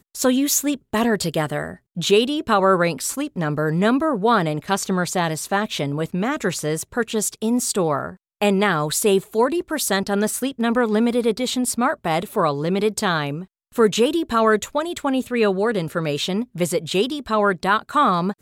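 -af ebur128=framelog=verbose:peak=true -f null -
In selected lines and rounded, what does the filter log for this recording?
Integrated loudness:
  I:         -20.8 LUFS
  Threshold: -30.8 LUFS
Loudness range:
  LRA:         2.3 LU
  Threshold: -41.0 LUFS
  LRA low:   -22.2 LUFS
  LRA high:  -19.9 LUFS
True peak:
  Peak:       -5.9 dBFS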